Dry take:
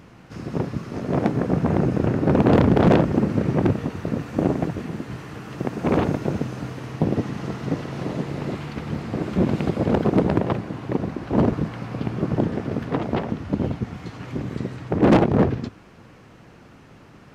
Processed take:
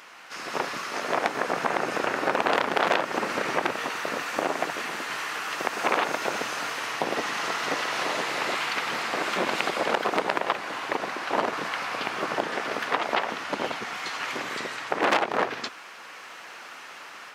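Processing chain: level rider gain up to 5 dB; high-pass 1.1 kHz 12 dB/octave; compression 2.5:1, threshold -31 dBFS, peak gain reduction 9 dB; trim +9 dB

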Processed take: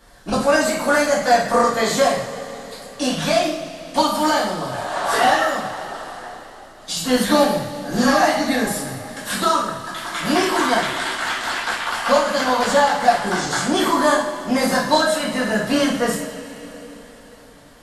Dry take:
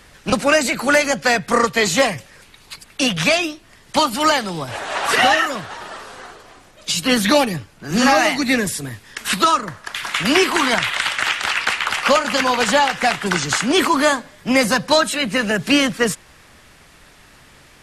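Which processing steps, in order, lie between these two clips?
fifteen-band graphic EQ 630 Hz +4 dB, 2.5 kHz -9 dB, 6.3 kHz -3 dB; two-slope reverb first 0.57 s, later 4.3 s, from -18 dB, DRR -6.5 dB; trim -8 dB

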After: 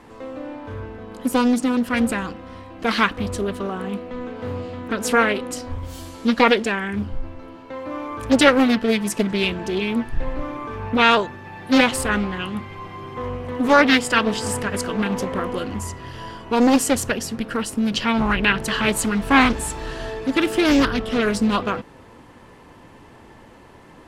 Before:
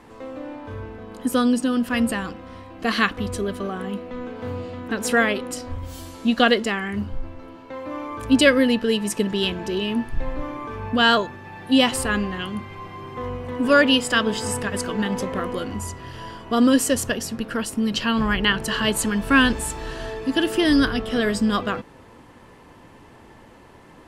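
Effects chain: loudspeaker Doppler distortion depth 0.69 ms; trim +1.5 dB

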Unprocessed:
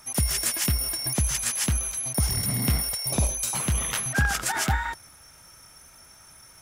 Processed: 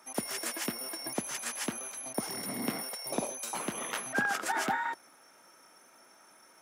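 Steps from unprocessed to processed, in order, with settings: high-pass 250 Hz 24 dB/octave; treble shelf 2.3 kHz -12 dB

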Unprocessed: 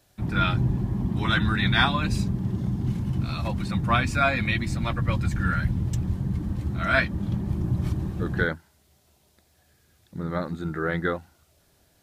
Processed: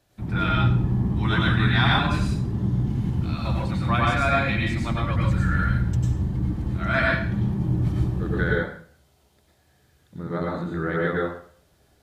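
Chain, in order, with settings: treble shelf 4.7 kHz -6.5 dB; plate-style reverb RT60 0.52 s, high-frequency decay 0.9×, pre-delay 85 ms, DRR -3 dB; trim -2.5 dB

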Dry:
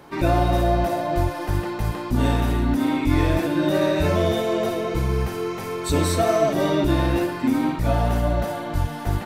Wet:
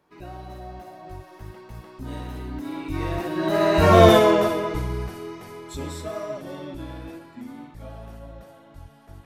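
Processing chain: Doppler pass-by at 4.09 s, 19 m/s, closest 3.1 m; dynamic bell 1.1 kHz, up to +7 dB, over -46 dBFS, Q 1.1; trim +8 dB

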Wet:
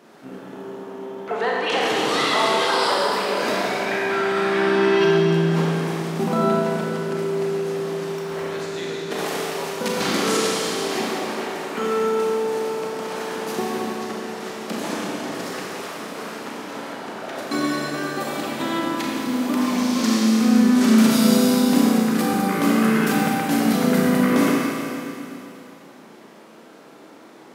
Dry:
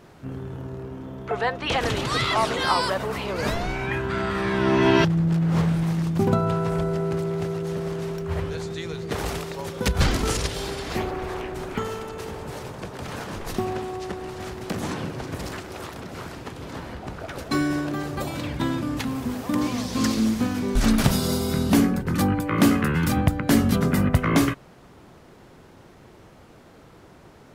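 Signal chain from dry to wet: high-pass 200 Hz 24 dB/octave; peak limiter -14.5 dBFS, peak gain reduction 7.5 dB; Schroeder reverb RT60 2.8 s, combs from 28 ms, DRR -4 dB

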